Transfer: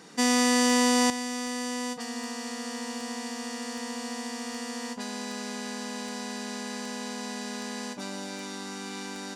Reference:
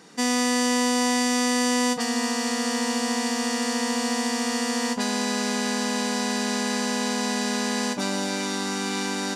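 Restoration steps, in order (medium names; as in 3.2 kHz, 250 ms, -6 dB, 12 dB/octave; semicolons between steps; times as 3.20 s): de-click; gain correction +10 dB, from 1.10 s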